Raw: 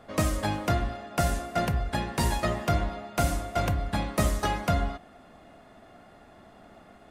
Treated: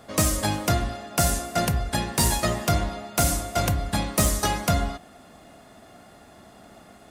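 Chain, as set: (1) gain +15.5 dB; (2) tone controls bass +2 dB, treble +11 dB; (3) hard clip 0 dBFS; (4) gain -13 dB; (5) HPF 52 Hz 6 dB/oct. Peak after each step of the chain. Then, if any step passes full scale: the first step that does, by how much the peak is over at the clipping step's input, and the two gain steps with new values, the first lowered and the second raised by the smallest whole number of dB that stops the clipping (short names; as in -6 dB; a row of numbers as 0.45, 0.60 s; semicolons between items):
+2.5, +6.0, 0.0, -13.0, -10.5 dBFS; step 1, 6.0 dB; step 1 +9.5 dB, step 4 -7 dB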